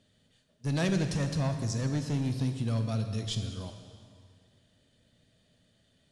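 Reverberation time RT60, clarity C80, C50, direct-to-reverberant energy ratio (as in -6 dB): 2.1 s, 8.5 dB, 7.5 dB, 6.0 dB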